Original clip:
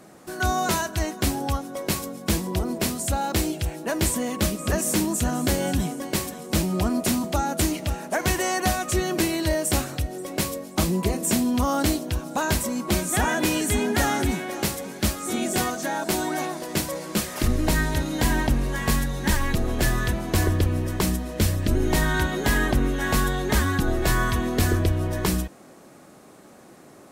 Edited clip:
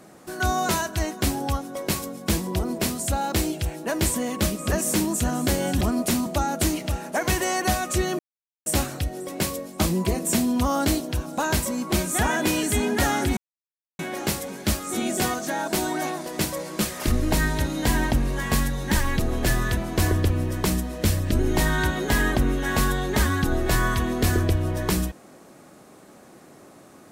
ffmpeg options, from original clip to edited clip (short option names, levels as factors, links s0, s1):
-filter_complex "[0:a]asplit=5[s0][s1][s2][s3][s4];[s0]atrim=end=5.812[s5];[s1]atrim=start=6.788:end=9.17,asetpts=PTS-STARTPTS,afade=t=out:st=2.378:d=0.004:c=hsin[s6];[s2]atrim=start=9.17:end=9.64,asetpts=PTS-STARTPTS,volume=0[s7];[s3]atrim=start=9.64:end=14.35,asetpts=PTS-STARTPTS,afade=t=in:d=0.004:c=hsin,afade=t=out:st=4.706:d=0.004:c=hsin,apad=pad_dur=0.62[s8];[s4]atrim=start=14.35,asetpts=PTS-STARTPTS,afade=t=in:d=0.004:c=hsin[s9];[s6][s7][s8][s9]concat=n=4:v=0:a=1[s10];[s5][s10]acrossfade=d=0.004:c1=hsin:c2=hsin"